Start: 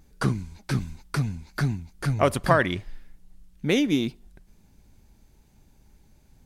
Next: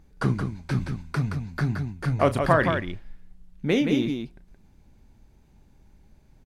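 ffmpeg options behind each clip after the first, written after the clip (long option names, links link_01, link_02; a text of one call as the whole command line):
ffmpeg -i in.wav -filter_complex "[0:a]highshelf=frequency=4500:gain=-11,asplit=2[link_01][link_02];[link_02]aecho=0:1:32.07|172:0.251|0.501[link_03];[link_01][link_03]amix=inputs=2:normalize=0" out.wav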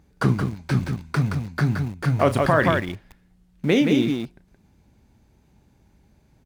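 ffmpeg -i in.wav -filter_complex "[0:a]asplit=2[link_01][link_02];[link_02]aeval=exprs='val(0)*gte(abs(val(0)),0.0251)':channel_layout=same,volume=-8dB[link_03];[link_01][link_03]amix=inputs=2:normalize=0,highpass=61,alimiter=level_in=8dB:limit=-1dB:release=50:level=0:latency=1,volume=-6.5dB" out.wav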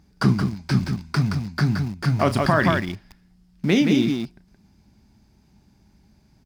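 ffmpeg -i in.wav -af "equalizer=frequency=200:width_type=o:width=0.33:gain=6,equalizer=frequency=500:width_type=o:width=0.33:gain=-8,equalizer=frequency=5000:width_type=o:width=0.33:gain=11" out.wav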